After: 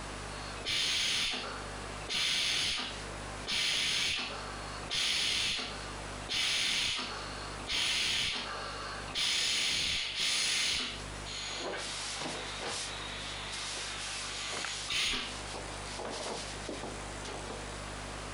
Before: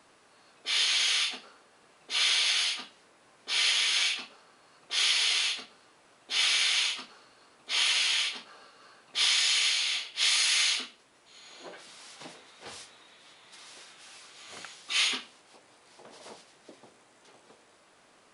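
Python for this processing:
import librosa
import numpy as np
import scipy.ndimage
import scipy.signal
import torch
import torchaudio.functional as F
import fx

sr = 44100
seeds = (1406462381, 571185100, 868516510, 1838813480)

p1 = fx.add_hum(x, sr, base_hz=50, snr_db=31)
p2 = fx.schmitt(p1, sr, flips_db=-23.0)
p3 = p1 + (p2 * 10.0 ** (-9.0 / 20.0))
p4 = fx.doubler(p3, sr, ms=32.0, db=-12.0)
p5 = fx.env_flatten(p4, sr, amount_pct=70)
y = p5 * 10.0 ** (-7.5 / 20.0)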